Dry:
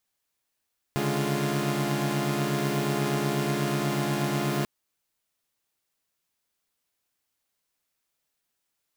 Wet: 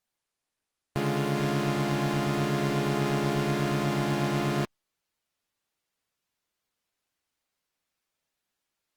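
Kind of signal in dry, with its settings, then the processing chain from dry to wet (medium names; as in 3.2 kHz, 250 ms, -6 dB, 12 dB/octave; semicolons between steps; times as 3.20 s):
chord C#3/D3/G#3/F4 saw, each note -28 dBFS 3.69 s
treble shelf 7.8 kHz -10 dB; Opus 32 kbps 48 kHz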